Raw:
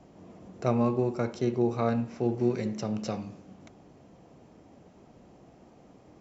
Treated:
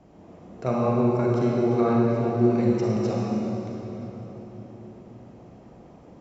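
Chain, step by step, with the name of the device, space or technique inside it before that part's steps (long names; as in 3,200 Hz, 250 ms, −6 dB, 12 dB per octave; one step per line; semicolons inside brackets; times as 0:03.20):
swimming-pool hall (convolution reverb RT60 4.1 s, pre-delay 30 ms, DRR −4 dB; high-shelf EQ 4,100 Hz −6.5 dB)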